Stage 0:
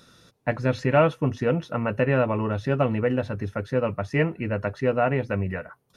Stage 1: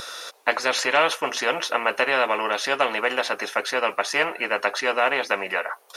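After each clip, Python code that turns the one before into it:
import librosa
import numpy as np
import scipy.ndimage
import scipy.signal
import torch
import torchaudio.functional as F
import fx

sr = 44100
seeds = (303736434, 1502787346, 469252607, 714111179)

y = scipy.signal.sosfilt(scipy.signal.butter(4, 560.0, 'highpass', fs=sr, output='sos'), x)
y = fx.spectral_comp(y, sr, ratio=2.0)
y = y * 10.0 ** (6.0 / 20.0)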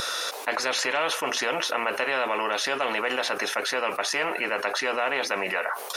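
y = fx.env_flatten(x, sr, amount_pct=70)
y = y * 10.0 ** (-8.0 / 20.0)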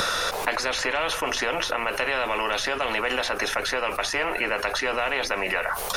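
y = fx.dmg_noise_colour(x, sr, seeds[0], colour='brown', level_db=-45.0)
y = fx.band_squash(y, sr, depth_pct=100)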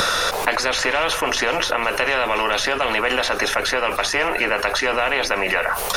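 y = x + 10.0 ** (-19.0 / 20.0) * np.pad(x, (int(735 * sr / 1000.0), 0))[:len(x)]
y = y * 10.0 ** (5.5 / 20.0)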